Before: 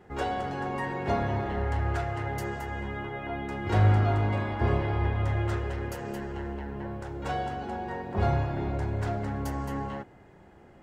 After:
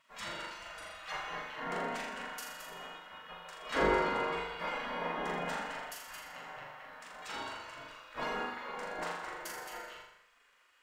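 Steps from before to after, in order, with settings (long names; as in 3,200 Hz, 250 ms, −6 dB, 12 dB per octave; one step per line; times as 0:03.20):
gate on every frequency bin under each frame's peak −20 dB weak
parametric band 530 Hz +3 dB 2.5 octaves
on a send: flutter between parallel walls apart 7 metres, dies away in 0.73 s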